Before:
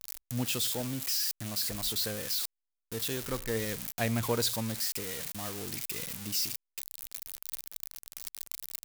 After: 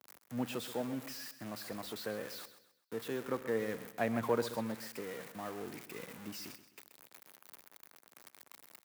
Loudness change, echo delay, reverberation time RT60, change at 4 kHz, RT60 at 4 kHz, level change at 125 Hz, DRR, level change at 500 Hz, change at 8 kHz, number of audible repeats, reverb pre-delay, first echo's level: -7.0 dB, 0.13 s, none, -14.5 dB, none, -10.5 dB, none, 0.0 dB, -16.5 dB, 3, none, -13.5 dB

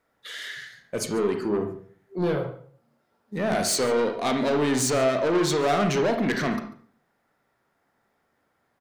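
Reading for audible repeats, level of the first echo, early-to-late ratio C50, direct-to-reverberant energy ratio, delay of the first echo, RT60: 1, -19.5 dB, 7.0 dB, 4.5 dB, 0.142 s, 0.50 s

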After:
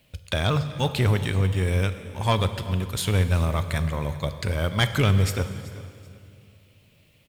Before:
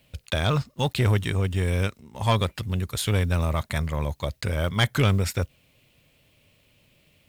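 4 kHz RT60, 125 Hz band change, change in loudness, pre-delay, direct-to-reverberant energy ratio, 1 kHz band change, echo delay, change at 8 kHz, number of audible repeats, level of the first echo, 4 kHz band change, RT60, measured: 2.1 s, +1.0 dB, +1.0 dB, 6 ms, 9.5 dB, +0.5 dB, 0.382 s, +0.5 dB, 2, -19.5 dB, +0.5 dB, 2.4 s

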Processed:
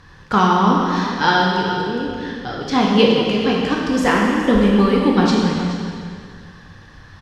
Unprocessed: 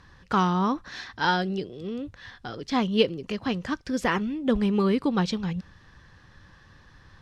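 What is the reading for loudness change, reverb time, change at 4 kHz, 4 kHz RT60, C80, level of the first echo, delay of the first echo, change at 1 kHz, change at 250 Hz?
+9.5 dB, 2.1 s, +10.5 dB, 2.0 s, 1.0 dB, -13.0 dB, 0.422 s, +10.5 dB, +10.0 dB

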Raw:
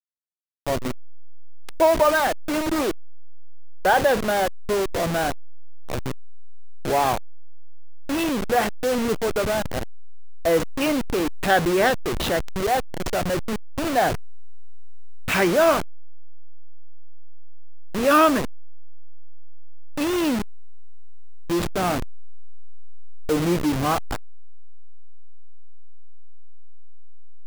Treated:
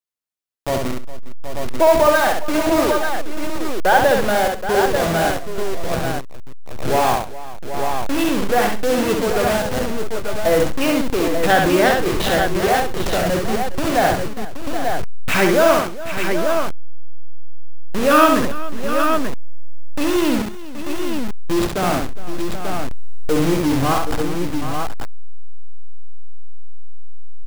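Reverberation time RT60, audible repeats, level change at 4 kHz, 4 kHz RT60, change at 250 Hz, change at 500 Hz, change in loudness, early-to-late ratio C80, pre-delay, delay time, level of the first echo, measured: none, 5, +5.0 dB, none, +5.0 dB, +5.0 dB, +3.5 dB, none, none, 67 ms, -4.0 dB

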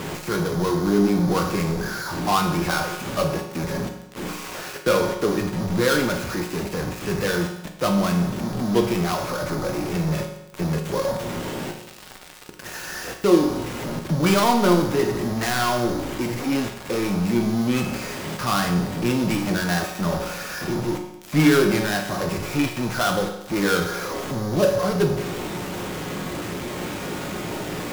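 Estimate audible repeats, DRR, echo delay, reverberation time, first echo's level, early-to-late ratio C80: none, 2.5 dB, none, 0.90 s, none, 9.0 dB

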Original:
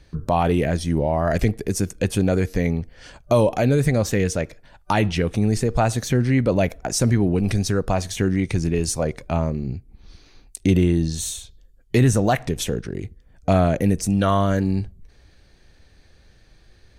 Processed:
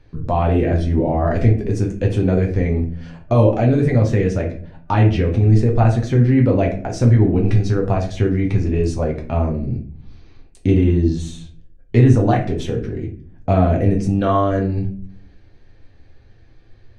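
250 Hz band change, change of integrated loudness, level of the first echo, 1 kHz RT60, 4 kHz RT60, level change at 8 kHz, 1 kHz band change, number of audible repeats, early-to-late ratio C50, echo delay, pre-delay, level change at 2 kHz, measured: +3.0 dB, +3.5 dB, none, 0.40 s, 0.30 s, under -10 dB, +1.5 dB, none, 9.5 dB, none, 8 ms, -1.5 dB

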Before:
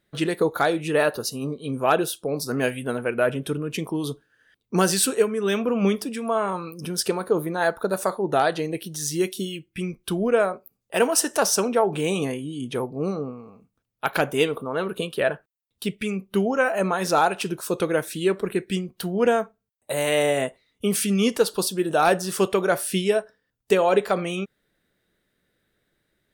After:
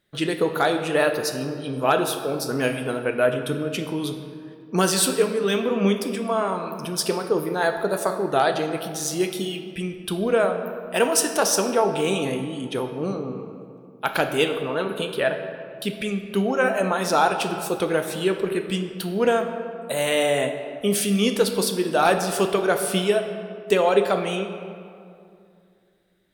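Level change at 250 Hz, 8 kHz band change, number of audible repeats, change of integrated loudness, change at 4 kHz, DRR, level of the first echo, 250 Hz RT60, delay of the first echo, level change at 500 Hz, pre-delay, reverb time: +0.5 dB, +0.5 dB, none, +0.5 dB, +2.5 dB, 6.0 dB, none, 2.7 s, none, +1.0 dB, 9 ms, 2.4 s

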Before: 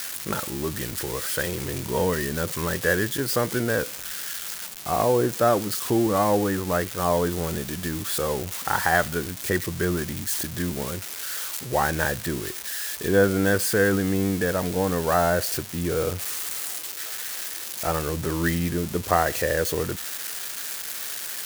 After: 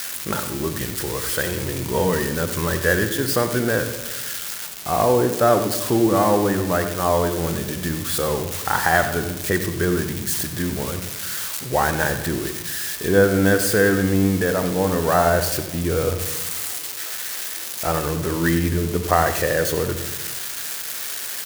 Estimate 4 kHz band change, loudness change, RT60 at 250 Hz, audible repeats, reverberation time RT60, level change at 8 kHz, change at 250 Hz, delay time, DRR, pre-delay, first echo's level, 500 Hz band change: +3.5 dB, +4.0 dB, 1.4 s, 1, 1.1 s, +3.5 dB, +4.0 dB, 93 ms, 8.0 dB, 37 ms, -12.5 dB, +4.0 dB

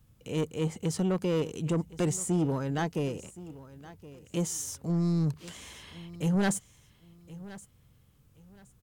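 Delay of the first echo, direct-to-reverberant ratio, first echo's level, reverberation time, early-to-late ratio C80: 1.07 s, none, -18.0 dB, none, none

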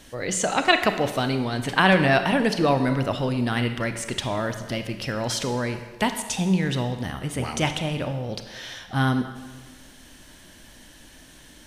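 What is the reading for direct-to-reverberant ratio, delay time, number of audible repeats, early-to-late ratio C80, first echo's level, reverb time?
7.5 dB, none, none, 10.5 dB, none, 1.4 s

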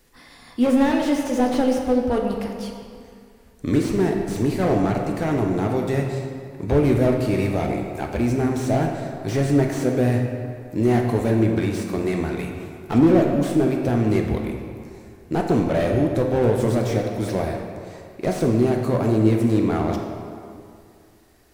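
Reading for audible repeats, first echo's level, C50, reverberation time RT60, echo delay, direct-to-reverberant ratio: none, none, 3.5 dB, 2.4 s, none, 1.5 dB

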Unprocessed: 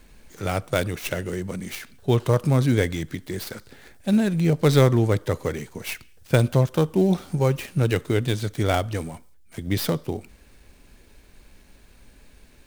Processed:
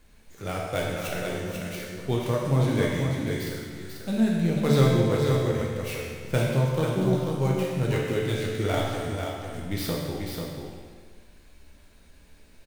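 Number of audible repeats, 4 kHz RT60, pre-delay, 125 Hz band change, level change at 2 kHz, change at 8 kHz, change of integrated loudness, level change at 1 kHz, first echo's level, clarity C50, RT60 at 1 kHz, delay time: 1, 1.5 s, 13 ms, -3.0 dB, -2.0 dB, -3.0 dB, -3.0 dB, -2.5 dB, -5.5 dB, -1.5 dB, 1.6 s, 0.491 s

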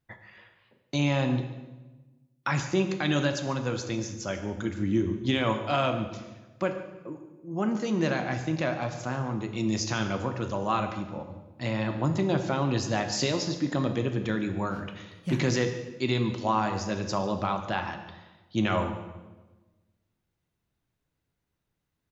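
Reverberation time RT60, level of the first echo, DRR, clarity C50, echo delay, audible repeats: 1.2 s, -17.0 dB, 5.5 dB, 8.5 dB, 0.144 s, 1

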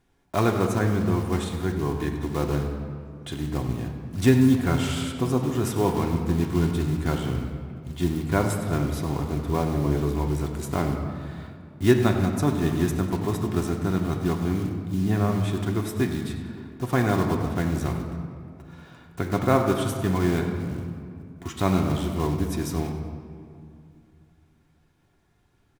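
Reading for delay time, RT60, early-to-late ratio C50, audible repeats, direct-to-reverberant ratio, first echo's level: 96 ms, 2.4 s, 5.5 dB, 1, 1.5 dB, -13.5 dB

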